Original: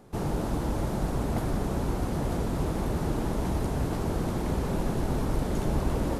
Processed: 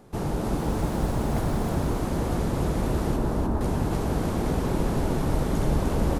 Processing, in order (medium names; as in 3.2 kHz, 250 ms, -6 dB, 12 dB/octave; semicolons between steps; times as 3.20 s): 0.58–1.70 s: short-mantissa float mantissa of 4-bit; 3.16–3.61 s: low-pass 1.5 kHz 24 dB/octave; feedback delay 304 ms, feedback 43%, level -4 dB; trim +1.5 dB